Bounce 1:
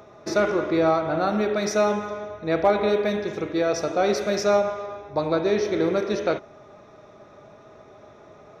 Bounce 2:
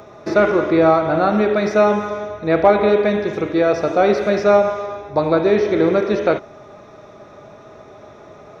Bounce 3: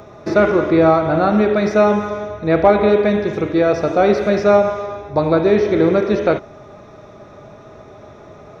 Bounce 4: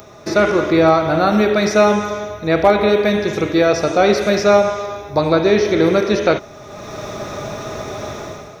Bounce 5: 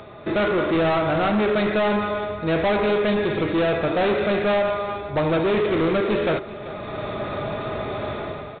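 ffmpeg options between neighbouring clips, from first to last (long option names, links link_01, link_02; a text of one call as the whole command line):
ffmpeg -i in.wav -filter_complex "[0:a]acrossover=split=3400[link_01][link_02];[link_02]acompressor=threshold=-54dB:ratio=4:attack=1:release=60[link_03];[link_01][link_03]amix=inputs=2:normalize=0,volume=7dB" out.wav
ffmpeg -i in.wav -af "lowshelf=frequency=180:gain=7.5" out.wav
ffmpeg -i in.wav -af "dynaudnorm=framelen=100:gausssize=9:maxgain=14dB,crystalizer=i=4.5:c=0,volume=-2.5dB" out.wav
ffmpeg -i in.wav -af "aresample=8000,asoftclip=type=tanh:threshold=-17.5dB,aresample=44100,aecho=1:1:386:0.168" out.wav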